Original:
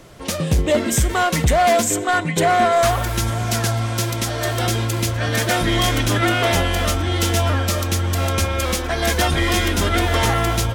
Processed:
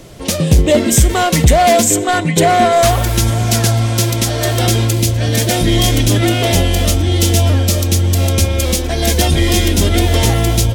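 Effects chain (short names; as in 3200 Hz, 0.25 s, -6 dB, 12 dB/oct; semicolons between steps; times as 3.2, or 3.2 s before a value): bell 1300 Hz -7.5 dB 1.5 oct, from 4.93 s -15 dB; gain +8 dB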